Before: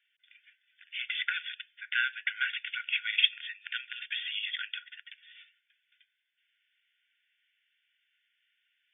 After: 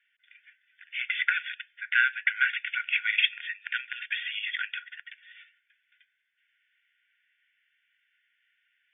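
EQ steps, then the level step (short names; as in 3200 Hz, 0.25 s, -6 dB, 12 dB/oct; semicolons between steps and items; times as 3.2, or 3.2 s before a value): tone controls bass +8 dB, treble -12 dB; dynamic EQ 2400 Hz, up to +3 dB, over -48 dBFS, Q 5.2; EQ curve 870 Hz 0 dB, 1300 Hz +13 dB, 1900 Hz +15 dB, 2900 Hz +9 dB; -7.0 dB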